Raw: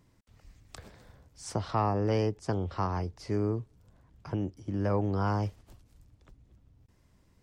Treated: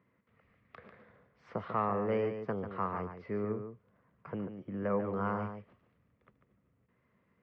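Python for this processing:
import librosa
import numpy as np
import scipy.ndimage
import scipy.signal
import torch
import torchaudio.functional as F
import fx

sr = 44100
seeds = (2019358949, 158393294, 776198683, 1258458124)

y = fx.cabinet(x, sr, low_hz=170.0, low_slope=12, high_hz=2600.0, hz=(210.0, 310.0, 480.0, 820.0, 1200.0, 2000.0), db=(4, -7, 5, -5, 6, 5))
y = y + 10.0 ** (-8.0 / 20.0) * np.pad(y, (int(144 * sr / 1000.0), 0))[:len(y)]
y = F.gain(torch.from_numpy(y), -4.0).numpy()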